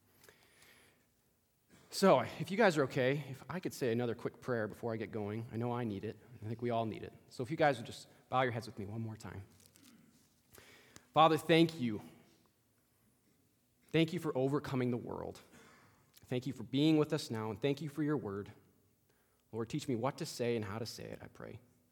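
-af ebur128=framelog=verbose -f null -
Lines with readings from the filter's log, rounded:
Integrated loudness:
  I:         -35.6 LUFS
  Threshold: -47.0 LUFS
Loudness range:
  LRA:         6.0 LU
  Threshold: -57.2 LUFS
  LRA low:   -40.4 LUFS
  LRA high:  -34.4 LUFS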